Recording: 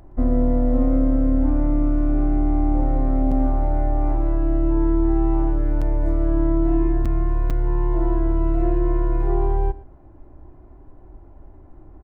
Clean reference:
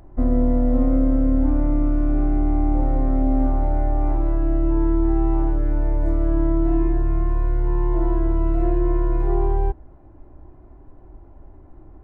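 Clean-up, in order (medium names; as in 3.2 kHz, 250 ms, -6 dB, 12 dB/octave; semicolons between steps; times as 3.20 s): interpolate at 3.31/5.81/7.05/7.50 s, 6.3 ms; inverse comb 115 ms -19 dB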